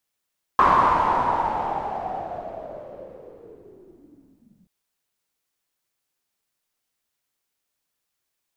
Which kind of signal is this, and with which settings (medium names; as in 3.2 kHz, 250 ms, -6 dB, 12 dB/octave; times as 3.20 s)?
swept filtered noise white, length 4.08 s lowpass, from 1.1 kHz, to 180 Hz, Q 7.9, linear, gain ramp -36.5 dB